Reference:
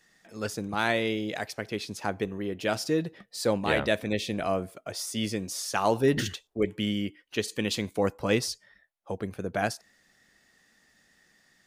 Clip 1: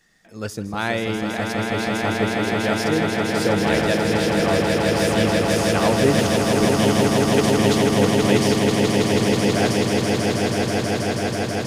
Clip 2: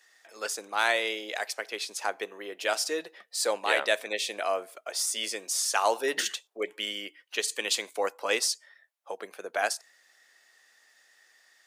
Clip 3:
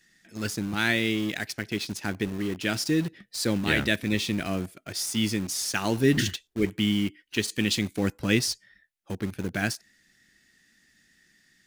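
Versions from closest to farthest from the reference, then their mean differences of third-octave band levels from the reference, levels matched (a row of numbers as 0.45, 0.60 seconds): 3, 2, 1; 5.0, 8.5, 12.5 decibels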